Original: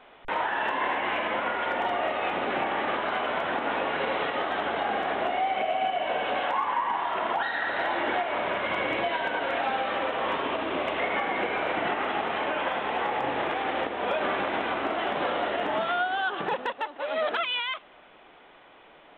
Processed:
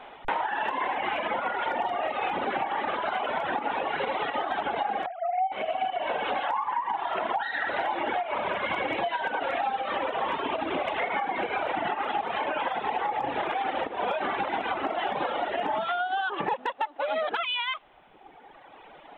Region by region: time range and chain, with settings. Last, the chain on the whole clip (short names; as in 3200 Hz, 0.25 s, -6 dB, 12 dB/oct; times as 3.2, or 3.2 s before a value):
5.06–5.52 sine-wave speech + bell 2700 Hz -4 dB 0.78 oct
whole clip: bell 830 Hz +7 dB 0.36 oct; reverb removal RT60 1.9 s; compressor, threshold -31 dBFS; gain +5.5 dB